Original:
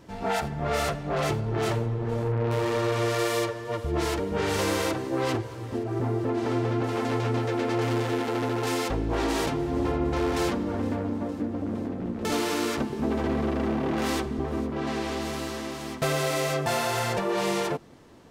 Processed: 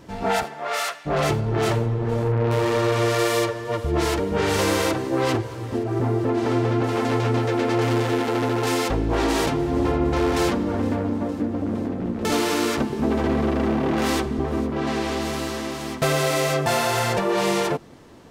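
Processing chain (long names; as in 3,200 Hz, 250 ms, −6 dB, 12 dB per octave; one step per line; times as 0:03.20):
0:00.42–0:01.05: high-pass filter 400 Hz → 1,500 Hz 12 dB per octave
level +5 dB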